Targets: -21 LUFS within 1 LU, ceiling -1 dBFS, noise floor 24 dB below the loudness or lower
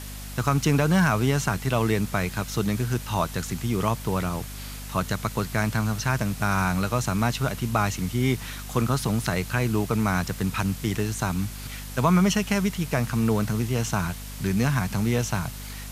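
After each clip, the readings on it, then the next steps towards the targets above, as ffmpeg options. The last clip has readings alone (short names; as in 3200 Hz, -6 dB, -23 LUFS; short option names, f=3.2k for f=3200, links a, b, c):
hum 50 Hz; harmonics up to 250 Hz; hum level -36 dBFS; noise floor -37 dBFS; noise floor target -50 dBFS; loudness -25.5 LUFS; peak -6.0 dBFS; loudness target -21.0 LUFS
-> -af "bandreject=f=50:t=h:w=6,bandreject=f=100:t=h:w=6,bandreject=f=150:t=h:w=6,bandreject=f=200:t=h:w=6,bandreject=f=250:t=h:w=6"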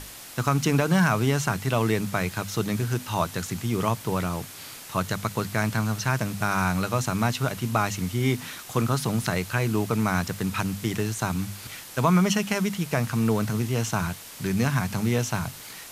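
hum none; noise floor -42 dBFS; noise floor target -50 dBFS
-> -af "afftdn=nr=8:nf=-42"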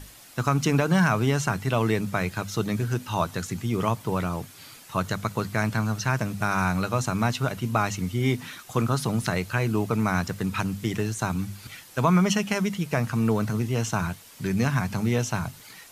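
noise floor -48 dBFS; noise floor target -50 dBFS
-> -af "afftdn=nr=6:nf=-48"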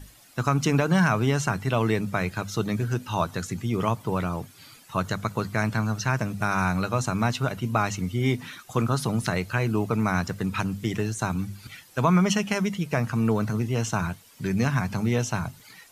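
noise floor -53 dBFS; loudness -26.0 LUFS; peak -7.0 dBFS; loudness target -21.0 LUFS
-> -af "volume=5dB"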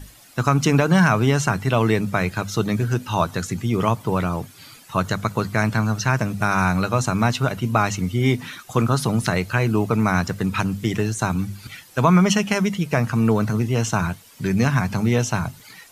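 loudness -21.0 LUFS; peak -2.0 dBFS; noise floor -48 dBFS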